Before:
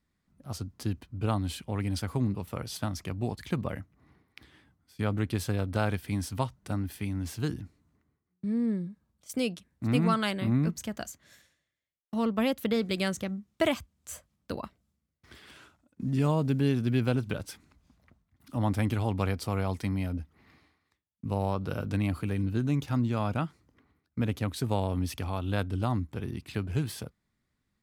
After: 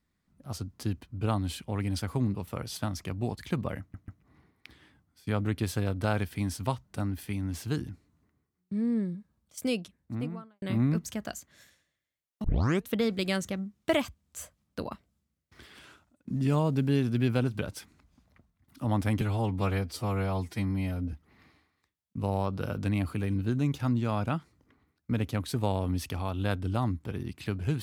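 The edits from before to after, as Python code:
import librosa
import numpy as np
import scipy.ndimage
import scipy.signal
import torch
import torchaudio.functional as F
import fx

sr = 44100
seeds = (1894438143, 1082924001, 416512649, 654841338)

y = fx.studio_fade_out(x, sr, start_s=9.44, length_s=0.9)
y = fx.edit(y, sr, fx.stutter(start_s=3.8, slice_s=0.14, count=3),
    fx.tape_start(start_s=12.16, length_s=0.46),
    fx.stretch_span(start_s=18.93, length_s=1.28, factor=1.5), tone=tone)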